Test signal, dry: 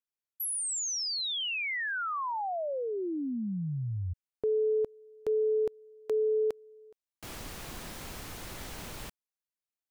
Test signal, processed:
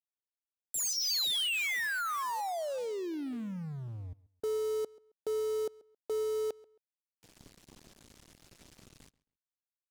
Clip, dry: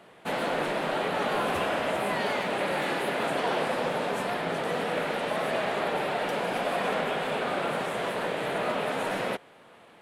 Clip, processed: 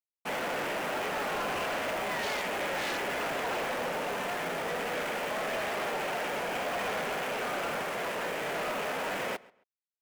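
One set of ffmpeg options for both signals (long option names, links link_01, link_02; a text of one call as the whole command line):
ffmpeg -i in.wav -filter_complex "[0:a]lowpass=6400,afwtdn=0.0126,lowshelf=frequency=140:gain=-8.5,aeval=exprs='sgn(val(0))*max(abs(val(0))-0.00316,0)':channel_layout=same,crystalizer=i=4:c=0,asoftclip=type=tanh:threshold=-28.5dB,asplit=2[link_01][link_02];[link_02]adelay=135,lowpass=frequency=4000:poles=1,volume=-21.5dB,asplit=2[link_03][link_04];[link_04]adelay=135,lowpass=frequency=4000:poles=1,volume=0.24[link_05];[link_01][link_03][link_05]amix=inputs=3:normalize=0" out.wav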